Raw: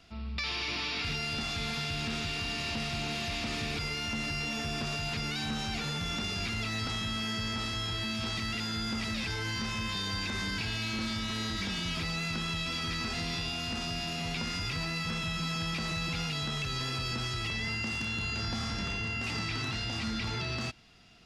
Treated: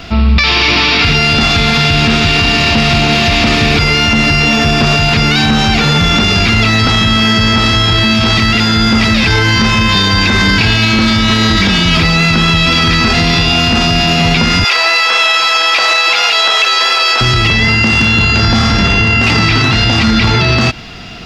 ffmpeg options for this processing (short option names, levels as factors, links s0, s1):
-filter_complex "[0:a]asettb=1/sr,asplit=3[s0][s1][s2];[s0]atrim=end=14.644[s3];[s1]atrim=start=14.64:end=17.21,asetpts=PTS-STARTPTS,afade=t=in:d=0.004:c=qsin,afade=t=out:st=2.566:d=0.004:c=qsin,highpass=f=540:w=0.5412,highpass=f=540:w=1.3066[s4];[s2]atrim=start=17.206[s5];[s3][s4]acrossfade=d=0.004:c1=hsin:c2=qsin[s6];[s6][s5]acrossfade=d=0.004:c1=qsin:c2=hsin,equalizer=f=9800:t=o:w=1.1:g=-11.5,alimiter=level_in=37.6:limit=0.891:release=50:level=0:latency=1,volume=0.891"